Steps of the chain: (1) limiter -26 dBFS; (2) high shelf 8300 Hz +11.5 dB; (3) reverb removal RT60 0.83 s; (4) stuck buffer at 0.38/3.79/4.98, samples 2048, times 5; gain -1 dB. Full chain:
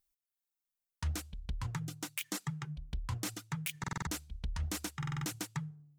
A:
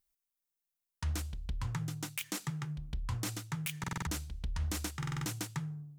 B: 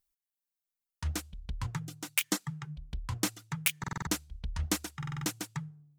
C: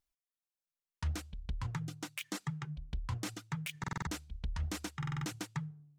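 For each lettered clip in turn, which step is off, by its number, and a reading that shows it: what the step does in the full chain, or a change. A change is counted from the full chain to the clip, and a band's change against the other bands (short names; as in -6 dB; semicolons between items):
3, crest factor change -1.5 dB; 1, crest factor change +8.0 dB; 2, 8 kHz band -5.0 dB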